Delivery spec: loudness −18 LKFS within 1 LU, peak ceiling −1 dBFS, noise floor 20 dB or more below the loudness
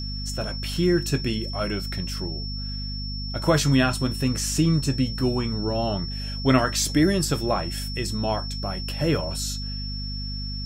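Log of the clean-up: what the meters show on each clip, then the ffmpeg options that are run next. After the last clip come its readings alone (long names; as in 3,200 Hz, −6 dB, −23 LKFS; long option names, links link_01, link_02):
mains hum 50 Hz; hum harmonics up to 250 Hz; level of the hum −29 dBFS; interfering tone 5,400 Hz; level of the tone −34 dBFS; integrated loudness −25.0 LKFS; sample peak −7.0 dBFS; target loudness −18.0 LKFS
→ -af "bandreject=frequency=50:width_type=h:width=4,bandreject=frequency=100:width_type=h:width=4,bandreject=frequency=150:width_type=h:width=4,bandreject=frequency=200:width_type=h:width=4,bandreject=frequency=250:width_type=h:width=4"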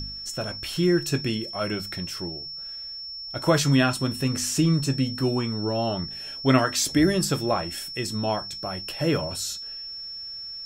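mains hum none found; interfering tone 5,400 Hz; level of the tone −34 dBFS
→ -af "bandreject=frequency=5400:width=30"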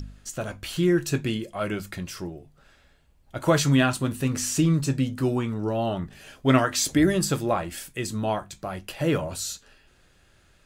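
interfering tone none found; integrated loudness −25.5 LKFS; sample peak −7.5 dBFS; target loudness −18.0 LKFS
→ -af "volume=7.5dB,alimiter=limit=-1dB:level=0:latency=1"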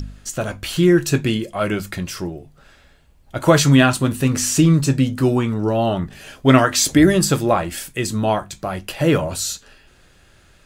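integrated loudness −18.0 LKFS; sample peak −1.0 dBFS; background noise floor −52 dBFS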